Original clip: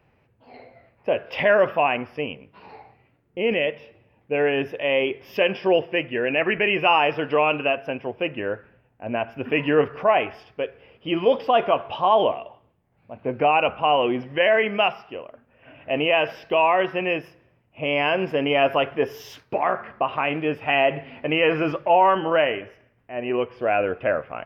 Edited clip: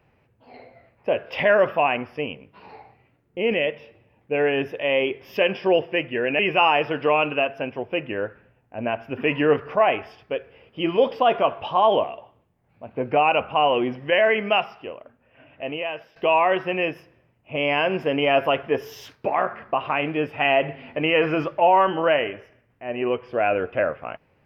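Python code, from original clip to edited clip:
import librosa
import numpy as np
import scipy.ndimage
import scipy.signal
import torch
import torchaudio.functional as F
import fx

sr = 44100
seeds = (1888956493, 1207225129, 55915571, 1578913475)

y = fx.edit(x, sr, fx.cut(start_s=6.39, length_s=0.28),
    fx.fade_out_to(start_s=15.16, length_s=1.28, floor_db=-17.0), tone=tone)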